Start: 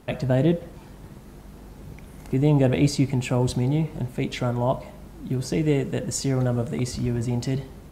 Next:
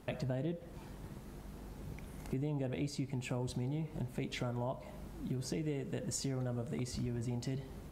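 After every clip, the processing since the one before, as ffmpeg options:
-af "acompressor=threshold=-30dB:ratio=5,volume=-5.5dB"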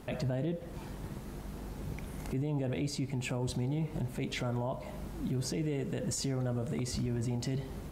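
-af "alimiter=level_in=9dB:limit=-24dB:level=0:latency=1:release=20,volume=-9dB,volume=6.5dB"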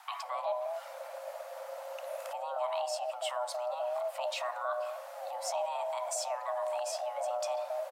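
-filter_complex "[0:a]acrossover=split=260[a][b];[a]adelay=230[c];[c][b]amix=inputs=2:normalize=0,afreqshift=490"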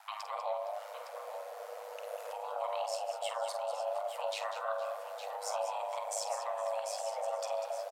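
-filter_complex "[0:a]aeval=exprs='val(0)*sin(2*PI*52*n/s)':c=same,asplit=2[a][b];[b]aecho=0:1:48|195|463|861:0.335|0.316|0.126|0.335[c];[a][c]amix=inputs=2:normalize=0"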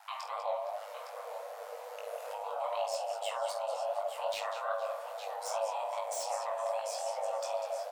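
-filter_complex "[0:a]flanger=delay=19:depth=4.7:speed=2.5,acrossover=split=2800[a][b];[b]aeval=exprs='0.0112*(abs(mod(val(0)/0.0112+3,4)-2)-1)':c=same[c];[a][c]amix=inputs=2:normalize=0,volume=4dB"

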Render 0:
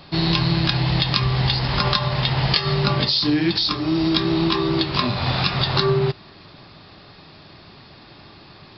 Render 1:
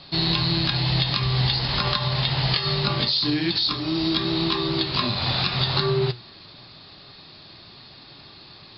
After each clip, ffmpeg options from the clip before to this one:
-filter_complex "[0:a]acrossover=split=2800[a][b];[b]acompressor=threshold=-26dB:ratio=4:attack=1:release=60[c];[a][c]amix=inputs=2:normalize=0,flanger=delay=7:depth=2.1:regen=83:speed=0.86:shape=triangular,lowpass=f=4.3k:t=q:w=3.1"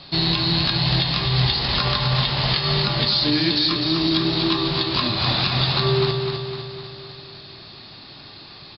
-filter_complex "[0:a]asplit=2[a][b];[b]alimiter=limit=-14dB:level=0:latency=1:release=288,volume=-0.5dB[c];[a][c]amix=inputs=2:normalize=0,aecho=1:1:253|506|759|1012|1265|1518|1771:0.531|0.292|0.161|0.0883|0.0486|0.0267|0.0147,volume=-3dB"

